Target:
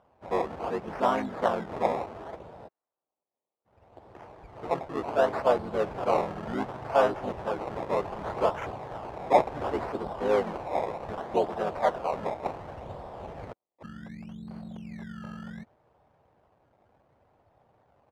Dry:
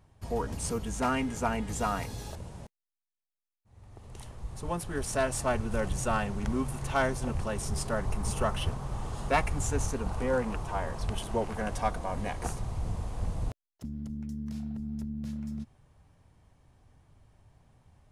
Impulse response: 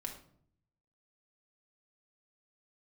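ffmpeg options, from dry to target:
-filter_complex "[0:a]asplit=2[s0][s1];[s1]asetrate=35002,aresample=44100,atempo=1.25992,volume=1[s2];[s0][s2]amix=inputs=2:normalize=0,acrusher=samples=20:mix=1:aa=0.000001:lfo=1:lforange=20:lforate=0.67,bandpass=f=690:t=q:w=1.2:csg=0,volume=1.78"

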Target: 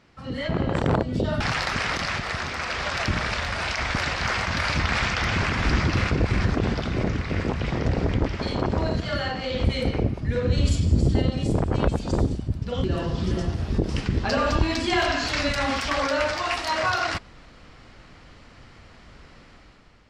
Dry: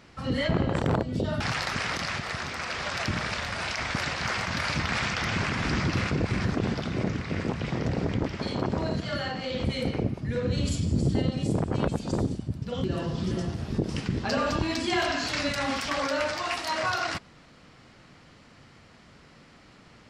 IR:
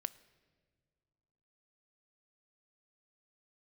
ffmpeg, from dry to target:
-af "highshelf=f=8400:g=-8,dynaudnorm=f=130:g=9:m=2.82,asubboost=boost=4.5:cutoff=64,volume=0.596"

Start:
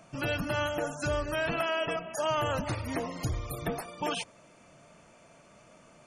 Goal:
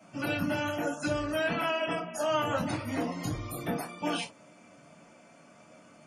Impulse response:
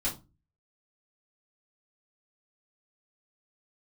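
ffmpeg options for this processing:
-filter_complex "[0:a]highpass=150[s0];[1:a]atrim=start_sample=2205,afade=t=out:st=0.13:d=0.01,atrim=end_sample=6174[s1];[s0][s1]afir=irnorm=-1:irlink=0,volume=0.596"

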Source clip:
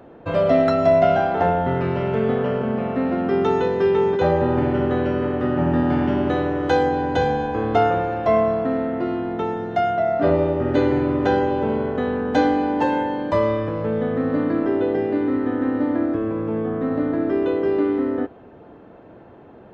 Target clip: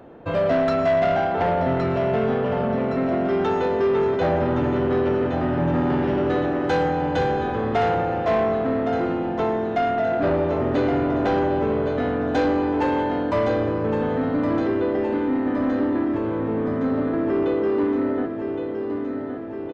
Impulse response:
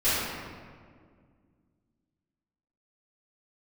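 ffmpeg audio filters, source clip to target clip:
-af "aecho=1:1:1116|2232|3348|4464|5580|6696|7812|8928:0.376|0.226|0.135|0.0812|0.0487|0.0292|0.0175|0.0105,asoftclip=type=tanh:threshold=0.178"

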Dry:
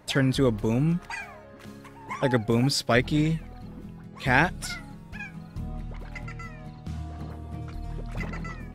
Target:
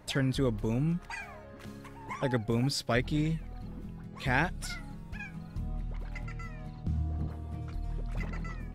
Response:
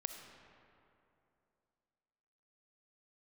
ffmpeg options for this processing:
-filter_complex "[0:a]lowshelf=f=78:g=8.5,asplit=2[s0][s1];[s1]acompressor=threshold=0.0141:ratio=6,volume=1.06[s2];[s0][s2]amix=inputs=2:normalize=0,asettb=1/sr,asplit=3[s3][s4][s5];[s3]atrim=end=6.834[s6];[s4]atrim=start=6.83:end=7.28,asetpts=PTS-STARTPTS,afade=t=in:d=0.004:c=qsin,afade=t=out:st=0.446:d=0.004:c=qsin,tiltshelf=f=680:g=6[s7];[s5]atrim=start=7.276[s8];[s6][s7]acrossfade=d=0.004:c1=hsin:c2=qsin[s9];[s9][s8]acrossfade=d=0.004:c1=qsin:c2=hsin,volume=0.376"

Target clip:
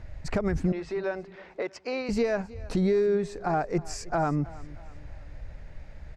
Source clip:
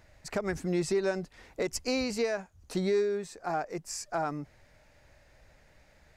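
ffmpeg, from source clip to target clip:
-filter_complex "[0:a]aemphasis=mode=reproduction:type=bsi,alimiter=limit=0.0668:level=0:latency=1:release=222,asettb=1/sr,asplit=3[s0][s1][s2];[s0]atrim=end=0.724[s3];[s1]atrim=start=0.72:end=2.09,asetpts=PTS-STARTPTS,afade=t=in:d=0.004:c=qsin,afade=t=out:st=1.366:d=0.004:c=qsin,highpass=510,lowpass=3500[s4];[s2]atrim=start=2.086[s5];[s3][s4]acrossfade=d=0.004:c1=hsin:c2=qsin[s6];[s6][s5]acrossfade=d=0.004:c1=qsin:c2=hsin,aecho=1:1:317|634|951:0.1|0.043|0.0185,volume=2.11"

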